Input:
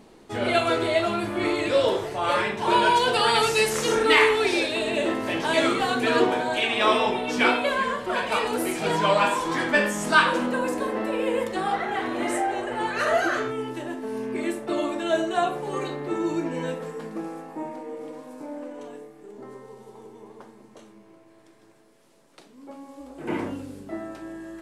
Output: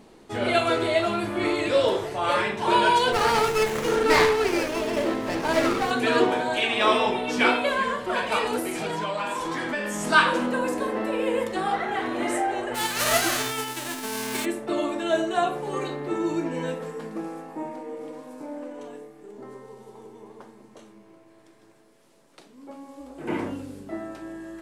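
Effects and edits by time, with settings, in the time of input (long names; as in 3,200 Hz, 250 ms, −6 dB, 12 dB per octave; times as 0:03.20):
0:03.12–0:05.91: windowed peak hold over 9 samples
0:08.59–0:10.04: downward compressor, threshold −25 dBFS
0:12.74–0:14.44: spectral envelope flattened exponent 0.3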